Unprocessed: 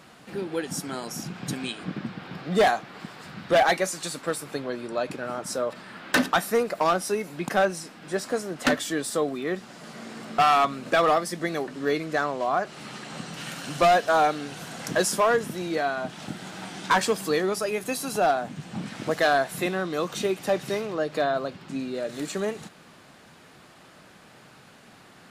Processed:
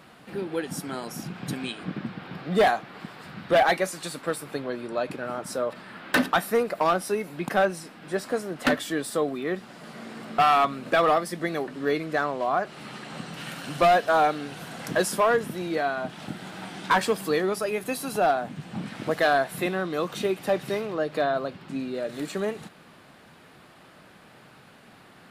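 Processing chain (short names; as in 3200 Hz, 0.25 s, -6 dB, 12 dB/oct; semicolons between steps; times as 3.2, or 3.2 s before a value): bell 6500 Hz -7 dB 0.89 oct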